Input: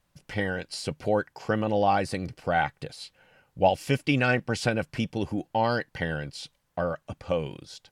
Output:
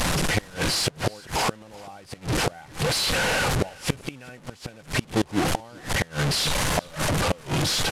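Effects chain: delta modulation 64 kbps, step -24.5 dBFS; high shelf 6600 Hz -4.5 dB; flipped gate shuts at -20 dBFS, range -28 dB; echo 0.386 s -23 dB; gain +8 dB

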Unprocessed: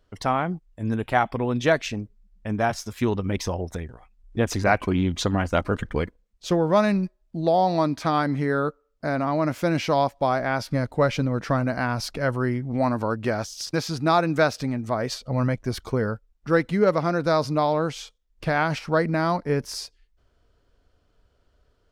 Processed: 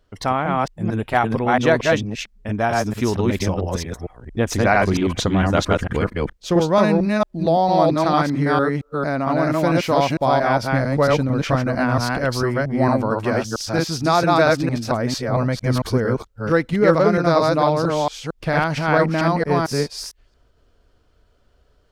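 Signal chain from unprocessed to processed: reverse delay 0.226 s, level -0.5 dB; gain +2.5 dB

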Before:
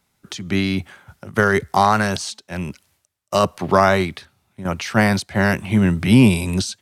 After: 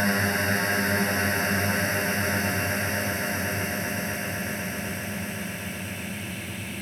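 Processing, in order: Paulstretch 43×, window 0.25 s, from 5.5; pre-emphasis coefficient 0.8; swelling echo 0.126 s, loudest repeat 8, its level -15 dB; gain +5.5 dB

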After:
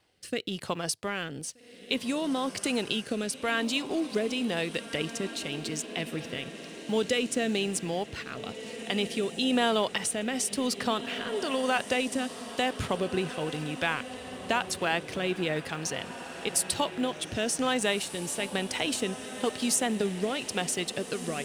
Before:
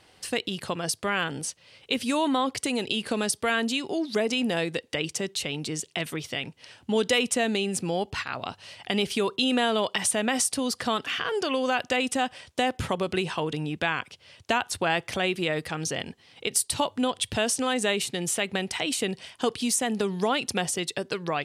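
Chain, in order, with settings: G.711 law mismatch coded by A; rotary speaker horn 1 Hz; diffused feedback echo 1.662 s, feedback 51%, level -11.5 dB

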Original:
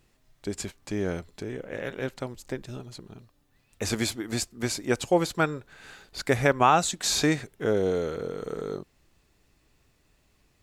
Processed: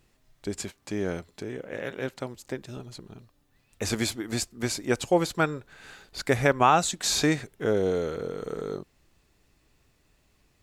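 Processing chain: 0.59–2.77 HPF 100 Hz 6 dB/oct

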